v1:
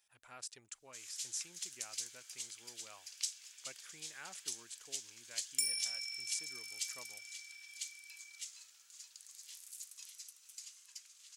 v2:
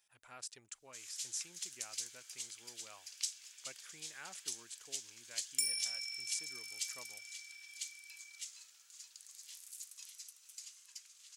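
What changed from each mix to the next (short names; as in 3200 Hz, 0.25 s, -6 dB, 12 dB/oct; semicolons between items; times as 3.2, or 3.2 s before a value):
none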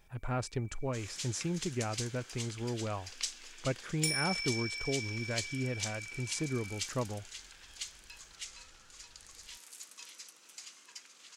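second sound: entry -1.55 s; master: remove differentiator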